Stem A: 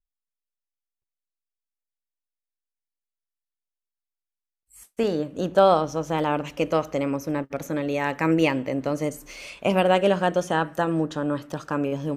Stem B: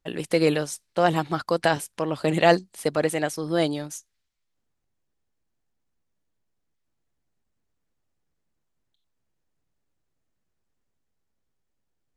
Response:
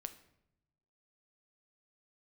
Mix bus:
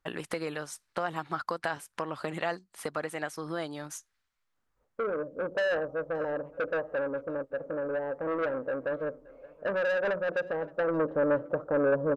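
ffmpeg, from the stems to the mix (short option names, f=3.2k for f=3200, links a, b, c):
-filter_complex "[0:a]lowpass=f=530:t=q:w=5.4,asoftclip=type=tanh:threshold=-15dB,acontrast=70,volume=-13dB,afade=t=in:st=10.68:d=0.5:silence=0.421697,asplit=2[a][b];[b]volume=-23.5dB[c];[1:a]acompressor=threshold=-32dB:ratio=4,volume=-3.5dB[d];[c]aecho=0:1:572:1[e];[a][d][e]amix=inputs=3:normalize=0,equalizer=f=1.3k:t=o:w=1.5:g=11"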